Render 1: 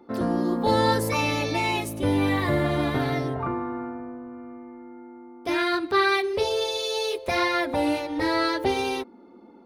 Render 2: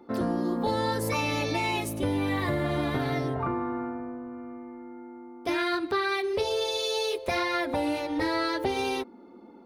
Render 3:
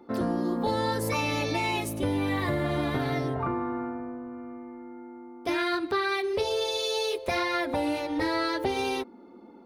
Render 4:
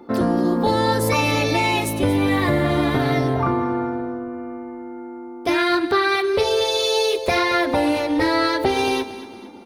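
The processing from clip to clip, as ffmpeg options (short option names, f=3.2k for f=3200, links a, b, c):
-af "acompressor=threshold=-24dB:ratio=6"
-af anull
-af "aecho=1:1:229|458|687|916:0.188|0.0848|0.0381|0.0172,volume=8.5dB"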